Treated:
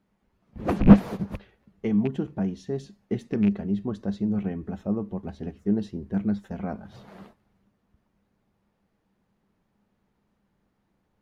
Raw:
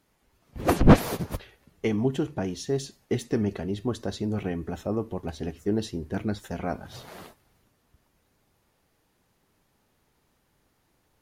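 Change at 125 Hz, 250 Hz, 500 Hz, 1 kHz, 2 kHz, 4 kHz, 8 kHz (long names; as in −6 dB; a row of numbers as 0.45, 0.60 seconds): +0.5 dB, +4.0 dB, −3.5 dB, −4.5 dB, −5.5 dB, can't be measured, below −15 dB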